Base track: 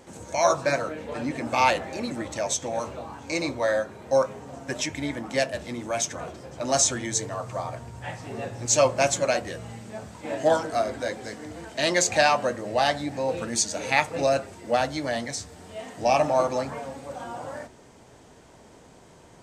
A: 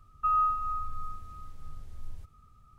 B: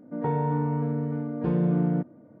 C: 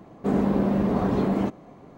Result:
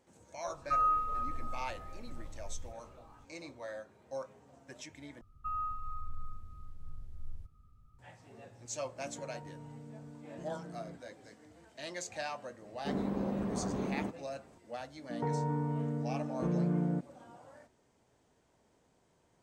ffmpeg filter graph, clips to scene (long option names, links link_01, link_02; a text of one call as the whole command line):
ffmpeg -i bed.wav -i cue0.wav -i cue1.wav -i cue2.wav -filter_complex "[1:a]asplit=2[link_01][link_02];[2:a]asplit=2[link_03][link_04];[0:a]volume=-19.5dB[link_05];[link_02]lowshelf=frequency=410:gain=10.5[link_06];[link_03]acompressor=threshold=-41dB:ratio=3:attack=38:release=380:knee=1:detection=peak[link_07];[link_05]asplit=2[link_08][link_09];[link_08]atrim=end=5.214[link_10];[link_06]atrim=end=2.78,asetpts=PTS-STARTPTS,volume=-12.5dB[link_11];[link_09]atrim=start=7.986[link_12];[link_01]atrim=end=2.78,asetpts=PTS-STARTPTS,volume=-3dB,afade=type=in:duration=0.004:curve=hsin,afade=type=out:start_time=2.776:duration=0.004:curve=hsin,adelay=470[link_13];[link_07]atrim=end=2.4,asetpts=PTS-STARTPTS,volume=-10.5dB,afade=type=in:duration=0.004:curve=hsin,afade=type=out:start_time=2.396:duration=0.004:curve=hsin,adelay=8940[link_14];[3:a]atrim=end=1.97,asetpts=PTS-STARTPTS,volume=-12.5dB,afade=type=in:duration=0.004:curve=hsin,afade=type=out:start_time=1.966:duration=0.004:curve=hsin,adelay=12610[link_15];[link_04]atrim=end=2.4,asetpts=PTS-STARTPTS,volume=-7.5dB,afade=type=in:duration=0.004:curve=hsin,afade=type=out:start_time=2.396:duration=0.004:curve=hsin,adelay=14980[link_16];[link_10][link_11]acrossfade=duration=0.004:curve1=hsin:curve2=hsin[link_17];[link_17][link_12]acrossfade=duration=0.004:curve1=hsin:curve2=hsin[link_18];[link_18][link_13][link_14][link_15][link_16]amix=inputs=5:normalize=0" out.wav